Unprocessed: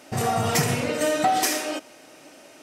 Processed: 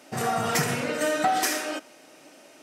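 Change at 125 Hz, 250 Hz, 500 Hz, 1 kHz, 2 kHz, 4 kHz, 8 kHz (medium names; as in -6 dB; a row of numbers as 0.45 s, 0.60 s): -6.5 dB, -3.0 dB, -2.5 dB, -2.0 dB, +0.5 dB, -2.5 dB, -3.0 dB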